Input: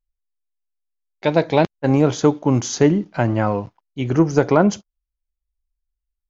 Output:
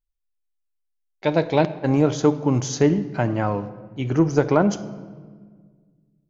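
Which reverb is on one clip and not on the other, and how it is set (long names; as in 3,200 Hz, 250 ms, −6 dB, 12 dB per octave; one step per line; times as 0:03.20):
rectangular room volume 1,900 cubic metres, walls mixed, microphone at 0.46 metres
level −3.5 dB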